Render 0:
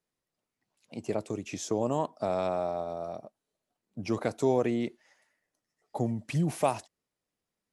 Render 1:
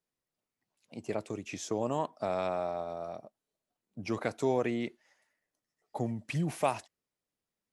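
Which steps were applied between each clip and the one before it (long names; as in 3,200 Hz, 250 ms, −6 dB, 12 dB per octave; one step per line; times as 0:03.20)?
dynamic equaliser 2,000 Hz, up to +6 dB, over −47 dBFS, Q 0.7
level −4 dB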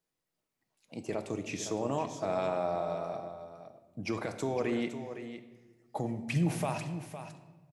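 brickwall limiter −25 dBFS, peak gain reduction 9.5 dB
on a send: single-tap delay 510 ms −10.5 dB
on the sum: rectangular room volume 820 cubic metres, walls mixed, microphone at 0.62 metres
level +2 dB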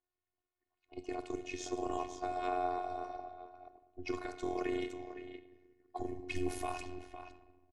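amplitude modulation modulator 89 Hz, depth 90%
phases set to zero 361 Hz
low-pass that shuts in the quiet parts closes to 2,300 Hz, open at −34 dBFS
level +1.5 dB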